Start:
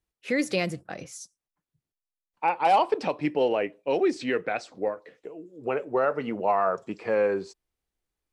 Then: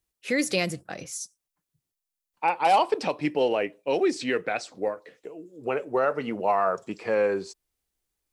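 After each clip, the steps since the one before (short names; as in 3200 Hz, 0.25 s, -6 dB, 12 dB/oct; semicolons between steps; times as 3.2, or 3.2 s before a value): high shelf 4400 Hz +9.5 dB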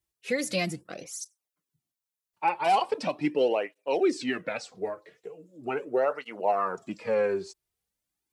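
tape flanging out of phase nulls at 0.4 Hz, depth 4.3 ms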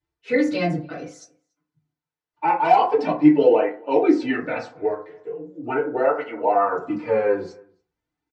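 air absorption 150 m; outdoor echo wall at 49 m, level -27 dB; FDN reverb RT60 0.4 s, low-frequency decay 1×, high-frequency decay 0.35×, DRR -8.5 dB; gain -2 dB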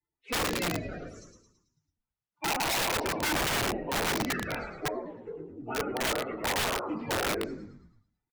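bin magnitudes rounded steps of 30 dB; frequency-shifting echo 0.11 s, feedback 49%, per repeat -67 Hz, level -6 dB; wrapped overs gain 15 dB; gain -8.5 dB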